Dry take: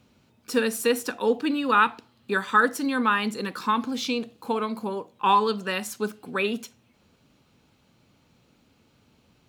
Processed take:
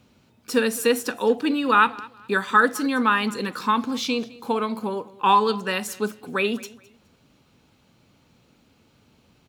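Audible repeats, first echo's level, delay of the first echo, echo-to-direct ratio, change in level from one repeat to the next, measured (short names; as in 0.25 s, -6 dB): 2, -21.0 dB, 0.21 s, -20.5 dB, -11.5 dB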